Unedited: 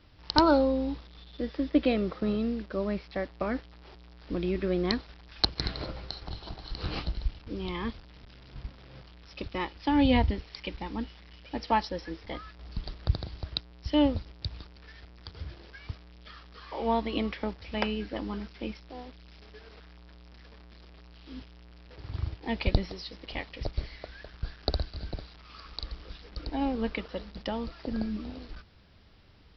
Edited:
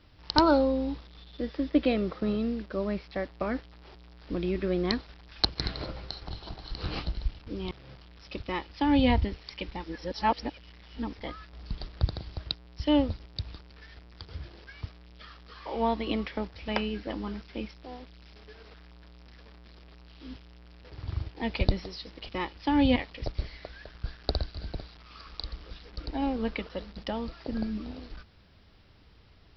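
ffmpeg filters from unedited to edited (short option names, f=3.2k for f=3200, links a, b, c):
-filter_complex "[0:a]asplit=6[a][b][c][d][e][f];[a]atrim=end=7.712[g];[b]atrim=start=8.768:end=10.902[h];[c]atrim=start=10.898:end=12.192,asetpts=PTS-STARTPTS,areverse[i];[d]atrim=start=12.188:end=23.352[j];[e]atrim=start=9.488:end=10.162[k];[f]atrim=start=23.348[l];[g][h]acrossfade=d=0.004:c1=hsin:c2=hsin[m];[m][i]acrossfade=d=0.004:c1=hsin:c2=hsin[n];[n][j]acrossfade=d=0.004:c1=hsin:c2=hsin[o];[o][k]acrossfade=d=0.004:c1=hsin:c2=hsin[p];[p][l]acrossfade=d=0.004:c1=hsin:c2=hsin"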